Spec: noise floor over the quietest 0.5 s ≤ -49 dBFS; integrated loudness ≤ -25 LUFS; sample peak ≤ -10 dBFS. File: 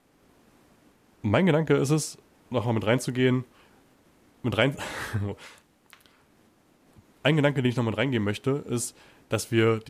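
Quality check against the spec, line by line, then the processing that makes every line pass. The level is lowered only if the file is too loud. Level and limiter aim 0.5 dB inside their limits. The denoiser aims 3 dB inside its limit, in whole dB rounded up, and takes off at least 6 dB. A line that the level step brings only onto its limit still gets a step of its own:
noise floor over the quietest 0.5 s -61 dBFS: OK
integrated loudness -26.0 LUFS: OK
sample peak -8.0 dBFS: fail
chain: limiter -10.5 dBFS

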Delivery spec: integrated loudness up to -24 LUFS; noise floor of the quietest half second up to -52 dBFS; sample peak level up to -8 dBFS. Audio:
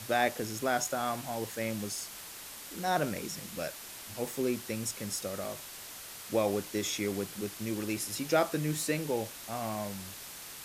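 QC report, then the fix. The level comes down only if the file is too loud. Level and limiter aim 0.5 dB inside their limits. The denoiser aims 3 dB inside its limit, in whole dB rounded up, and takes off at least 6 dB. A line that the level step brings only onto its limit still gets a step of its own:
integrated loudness -34.0 LUFS: OK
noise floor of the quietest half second -46 dBFS: fail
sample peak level -14.0 dBFS: OK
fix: denoiser 9 dB, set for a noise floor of -46 dBFS

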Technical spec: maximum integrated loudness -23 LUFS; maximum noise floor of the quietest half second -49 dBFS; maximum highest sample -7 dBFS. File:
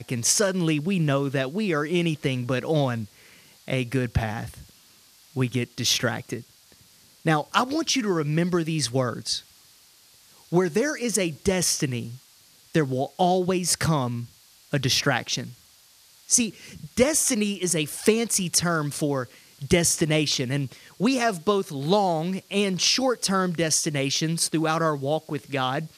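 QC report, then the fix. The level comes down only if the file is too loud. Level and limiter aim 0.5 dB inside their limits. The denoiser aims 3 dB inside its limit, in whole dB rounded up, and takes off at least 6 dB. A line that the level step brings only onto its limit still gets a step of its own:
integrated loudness -24.0 LUFS: OK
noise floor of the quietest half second -55 dBFS: OK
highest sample -5.5 dBFS: fail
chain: limiter -7.5 dBFS

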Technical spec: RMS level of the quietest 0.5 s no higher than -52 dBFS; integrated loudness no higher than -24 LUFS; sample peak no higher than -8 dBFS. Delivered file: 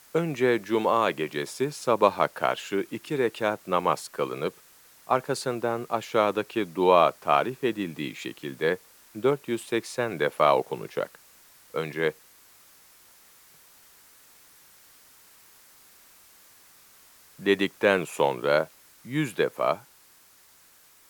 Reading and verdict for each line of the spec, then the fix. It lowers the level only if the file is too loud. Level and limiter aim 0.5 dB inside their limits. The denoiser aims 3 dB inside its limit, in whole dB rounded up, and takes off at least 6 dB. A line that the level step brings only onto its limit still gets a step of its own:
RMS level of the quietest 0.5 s -57 dBFS: OK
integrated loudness -26.5 LUFS: OK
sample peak -5.0 dBFS: fail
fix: limiter -8.5 dBFS

